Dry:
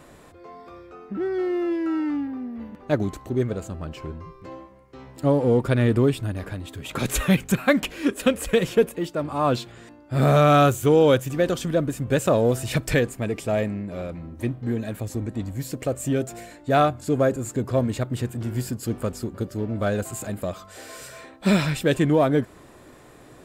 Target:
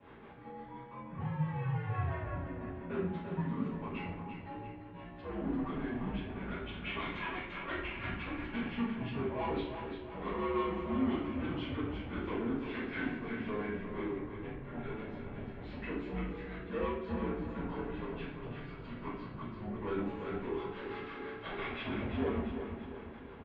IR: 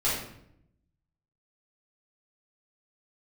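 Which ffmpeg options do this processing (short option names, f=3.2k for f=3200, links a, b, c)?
-filter_complex "[0:a]asettb=1/sr,asplit=3[a][b][c];[a]atrim=end=1.094[d];[b]atrim=start=1.09:end=3.67,asetpts=PTS-STARTPTS,afade=t=in:d=0.004:c=qsin,afade=t=out:st=2.576:d=0.004:c=qsin,lowshelf=f=310:t=q:w=3:g=-10.5[e];[c]atrim=start=3.666[f];[d][e]acrossfade=d=0.004:c1=hsin:c2=qsin[g];[g][f]acrossfade=d=0.004:c1=qsin:c2=hsin,acompressor=threshold=-28dB:ratio=4,acrossover=split=690[h][i];[h]aeval=exprs='val(0)*(1-0.7/2+0.7/2*cos(2*PI*5.9*n/s))':c=same[j];[i]aeval=exprs='val(0)*(1-0.7/2-0.7/2*cos(2*PI*5.9*n/s))':c=same[k];[j][k]amix=inputs=2:normalize=0,asoftclip=type=hard:threshold=-31.5dB,aecho=1:1:343|686|1029|1372|1715|2058:0.398|0.191|0.0917|0.044|0.0211|0.0101[l];[1:a]atrim=start_sample=2205[m];[l][m]afir=irnorm=-1:irlink=0,highpass=f=340:t=q:w=0.5412,highpass=f=340:t=q:w=1.307,lowpass=f=3.3k:t=q:w=0.5176,lowpass=f=3.3k:t=q:w=0.7071,lowpass=f=3.3k:t=q:w=1.932,afreqshift=-220,volume=-8.5dB"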